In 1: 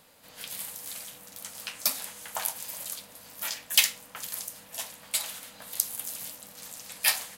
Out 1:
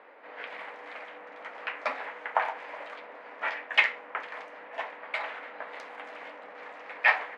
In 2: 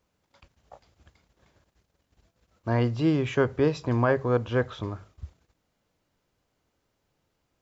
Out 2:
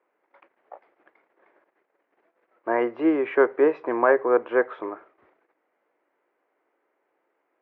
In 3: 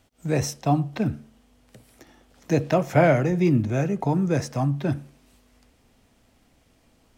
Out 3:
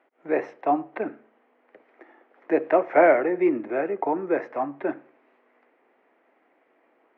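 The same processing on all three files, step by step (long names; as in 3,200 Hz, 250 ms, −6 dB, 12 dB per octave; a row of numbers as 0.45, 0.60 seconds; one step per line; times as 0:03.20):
Chebyshev band-pass filter 340–2,100 Hz, order 3
normalise the peak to −6 dBFS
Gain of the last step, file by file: +10.5, +6.0, +3.0 decibels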